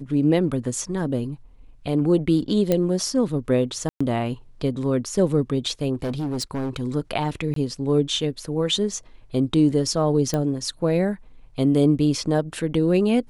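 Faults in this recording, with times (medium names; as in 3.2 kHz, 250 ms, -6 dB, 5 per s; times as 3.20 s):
2.72 s: pop -8 dBFS
3.89–4.00 s: dropout 115 ms
5.94–6.82 s: clipped -22.5 dBFS
7.54–7.56 s: dropout 23 ms
10.34 s: pop -11 dBFS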